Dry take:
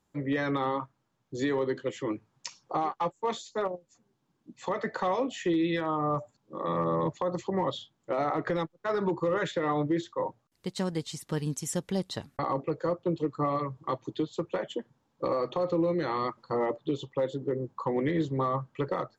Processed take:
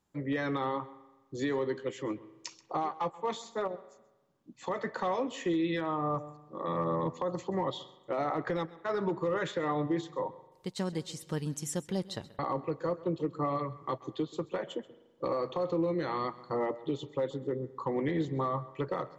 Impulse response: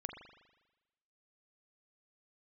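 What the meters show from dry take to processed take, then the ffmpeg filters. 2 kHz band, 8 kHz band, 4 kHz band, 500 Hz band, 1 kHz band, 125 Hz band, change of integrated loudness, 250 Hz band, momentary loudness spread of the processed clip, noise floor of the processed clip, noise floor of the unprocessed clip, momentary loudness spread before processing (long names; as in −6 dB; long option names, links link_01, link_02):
−3.0 dB, −3.0 dB, −3.0 dB, −3.0 dB, −3.0 dB, −3.0 dB, −3.0 dB, −3.0 dB, 7 LU, −65 dBFS, −75 dBFS, 7 LU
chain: -filter_complex "[0:a]asplit=2[link_01][link_02];[1:a]atrim=start_sample=2205,adelay=132[link_03];[link_02][link_03]afir=irnorm=-1:irlink=0,volume=-15.5dB[link_04];[link_01][link_04]amix=inputs=2:normalize=0,volume=-3dB"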